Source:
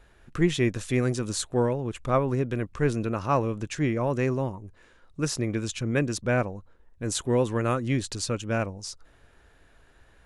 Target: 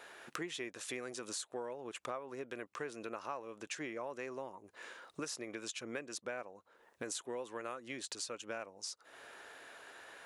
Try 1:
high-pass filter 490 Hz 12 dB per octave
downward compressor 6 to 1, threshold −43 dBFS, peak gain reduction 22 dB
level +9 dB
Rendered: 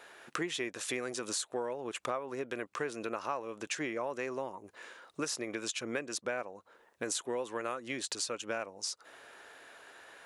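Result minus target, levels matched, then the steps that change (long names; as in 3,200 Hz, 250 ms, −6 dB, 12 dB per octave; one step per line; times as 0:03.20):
downward compressor: peak gain reduction −6 dB
change: downward compressor 6 to 1, threshold −50.5 dBFS, peak gain reduction 28 dB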